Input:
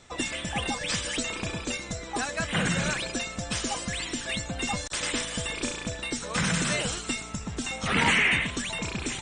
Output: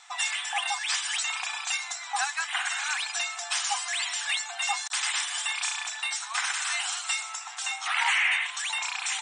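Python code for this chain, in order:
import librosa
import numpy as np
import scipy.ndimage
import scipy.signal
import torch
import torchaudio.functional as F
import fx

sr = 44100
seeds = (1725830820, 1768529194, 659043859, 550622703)

y = fx.rider(x, sr, range_db=3, speed_s=0.5)
y = fx.brickwall_highpass(y, sr, low_hz=690.0)
y = F.gain(torch.from_numpy(y), 1.5).numpy()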